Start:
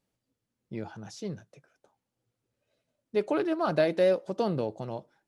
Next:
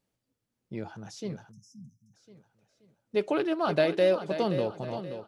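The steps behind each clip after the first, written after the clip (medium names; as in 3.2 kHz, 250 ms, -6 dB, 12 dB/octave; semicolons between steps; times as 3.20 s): dynamic bell 3 kHz, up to +6 dB, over -53 dBFS, Q 2; on a send: feedback delay 527 ms, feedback 36%, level -10.5 dB; on the sum: spectral selection erased 1.51–2.14 s, 260–5000 Hz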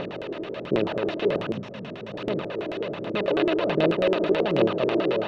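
spectral levelling over time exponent 0.2; phaser 1.3 Hz, delay 3.3 ms, feedback 46%; LFO low-pass square 9.2 Hz 380–3100 Hz; trim -6 dB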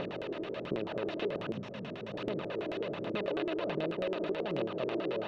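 compression 5:1, threshold -26 dBFS, peak gain reduction 10 dB; trim -5 dB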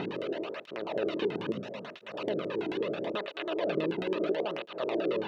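cancelling through-zero flanger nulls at 0.75 Hz, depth 1.8 ms; trim +5.5 dB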